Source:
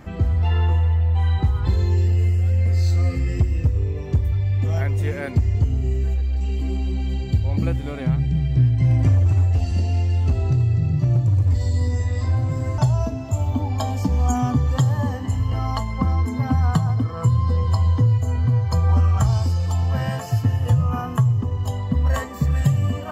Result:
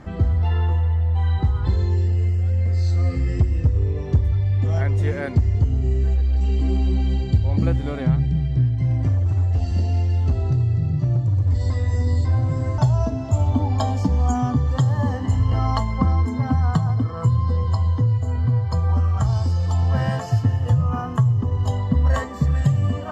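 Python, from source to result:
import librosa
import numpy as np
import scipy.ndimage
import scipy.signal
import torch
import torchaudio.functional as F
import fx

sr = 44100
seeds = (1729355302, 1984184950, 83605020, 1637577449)

y = fx.notch(x, sr, hz=6200.0, q=12.0, at=(18.04, 18.77))
y = fx.edit(y, sr, fx.reverse_span(start_s=11.7, length_s=0.55), tone=tone)
y = scipy.signal.sosfilt(scipy.signal.bessel(2, 5800.0, 'lowpass', norm='mag', fs=sr, output='sos'), y)
y = fx.rider(y, sr, range_db=10, speed_s=0.5)
y = fx.peak_eq(y, sr, hz=2500.0, db=-6.0, octaves=0.4)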